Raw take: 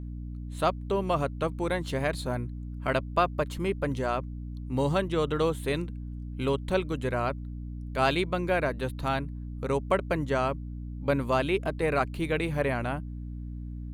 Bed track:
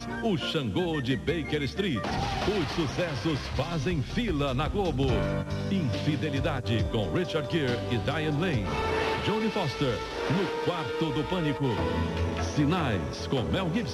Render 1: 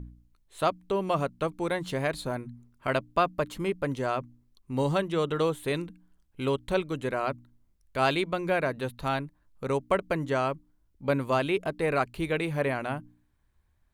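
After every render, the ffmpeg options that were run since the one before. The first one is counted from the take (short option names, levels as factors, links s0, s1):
-af "bandreject=f=60:t=h:w=4,bandreject=f=120:t=h:w=4,bandreject=f=180:t=h:w=4,bandreject=f=240:t=h:w=4,bandreject=f=300:t=h:w=4"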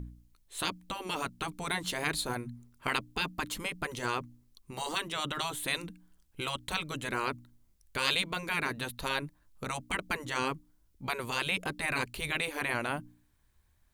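-af "afftfilt=real='re*lt(hypot(re,im),0.158)':imag='im*lt(hypot(re,im),0.158)':win_size=1024:overlap=0.75,highshelf=f=3000:g=9"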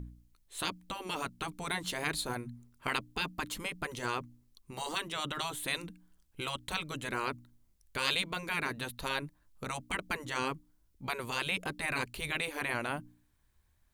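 -af "volume=0.794"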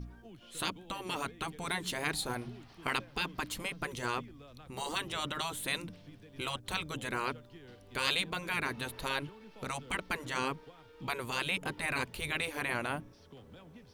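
-filter_complex "[1:a]volume=0.0531[s0];[0:a][s0]amix=inputs=2:normalize=0"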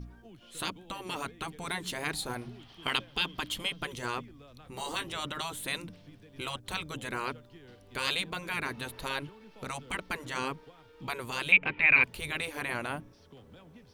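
-filter_complex "[0:a]asettb=1/sr,asplit=3[s0][s1][s2];[s0]atrim=end=2.594[s3];[s1]atrim=start=2.59:end=3.95,asetpts=PTS-STARTPTS,afade=t=in:d=0.004:c=qsin,afade=t=out:st=1.356:d=0.004:c=qsin,equalizer=f=3200:t=o:w=0.32:g=13.5[s4];[s2]atrim=start=3.946[s5];[s3][s4]acrossfade=d=0.004:c1=hsin:c2=qsin[s6];[s6][s5]acrossfade=d=0.004:c1=qsin:c2=hsin,asettb=1/sr,asplit=3[s7][s8][s9];[s7]atrim=end=4.624[s10];[s8]atrim=start=4.62:end=5.1,asetpts=PTS-STARTPTS,afade=t=in:d=0.004:c=qsin,afade=t=out:st=0.476:d=0.004:c=qsin,asplit=2[s11][s12];[s12]adelay=18,volume=0.447[s13];[s11][s13]amix=inputs=2:normalize=0,atrim=end_sample=21168[s14];[s9]atrim=start=5.096[s15];[s10][s14]acrossfade=d=0.004:c1=hsin:c2=qsin[s16];[s16][s15]acrossfade=d=0.004:c1=qsin:c2=hsin,asettb=1/sr,asplit=3[s17][s18][s19];[s17]atrim=end=11.524[s20];[s18]atrim=start=11.52:end=12.04,asetpts=PTS-STARTPTS,afade=t=in:d=0.004:c=qsin,afade=t=out:st=0.516:d=0.004:c=qsin,lowpass=f=2400:t=q:w=8.7[s21];[s19]atrim=start=12.036[s22];[s20][s21]acrossfade=d=0.004:c1=hsin:c2=qsin[s23];[s23][s22]acrossfade=d=0.004:c1=qsin:c2=hsin"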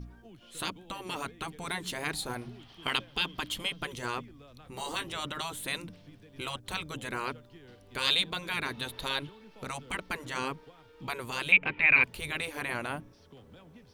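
-filter_complex "[0:a]asettb=1/sr,asplit=3[s0][s1][s2];[s0]atrim=end=8.014[s3];[s1]atrim=start=8.01:end=9.41,asetpts=PTS-STARTPTS,afade=t=in:d=0.004:c=qsin,afade=t=out:st=1.396:d=0.004:c=qsin,equalizer=f=3600:w=3.7:g=8.5[s4];[s2]atrim=start=9.406[s5];[s3][s4]acrossfade=d=0.004:c1=hsin:c2=qsin[s6];[s6][s5]acrossfade=d=0.004:c1=qsin:c2=hsin"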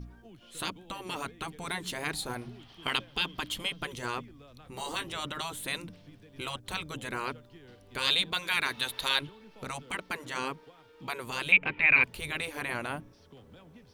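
-filter_complex "[0:a]asettb=1/sr,asplit=3[s0][s1][s2];[s0]atrim=end=8.334[s3];[s1]atrim=start=8.33:end=9.21,asetpts=PTS-STARTPTS,afade=t=in:d=0.004:c=qsin,afade=t=out:st=0.876:d=0.004:c=qsin,tiltshelf=f=640:g=-6[s4];[s2]atrim=start=9.206[s5];[s3][s4]acrossfade=d=0.004:c1=hsin:c2=qsin[s6];[s6][s5]acrossfade=d=0.004:c1=qsin:c2=hsin,asettb=1/sr,asplit=3[s7][s8][s9];[s7]atrim=end=9.824[s10];[s8]atrim=start=9.82:end=11.27,asetpts=PTS-STARTPTS,afade=t=in:d=0.004:c=qsin,afade=t=out:st=1.446:d=0.004:c=qsin,lowshelf=f=89:g=-11.5[s11];[s9]atrim=start=11.266[s12];[s10][s11]acrossfade=d=0.004:c1=hsin:c2=qsin[s13];[s13][s12]acrossfade=d=0.004:c1=qsin:c2=hsin"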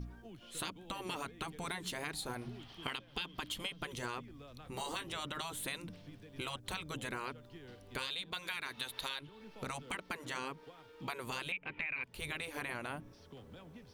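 -af "alimiter=limit=0.158:level=0:latency=1:release=295,acompressor=threshold=0.0141:ratio=6"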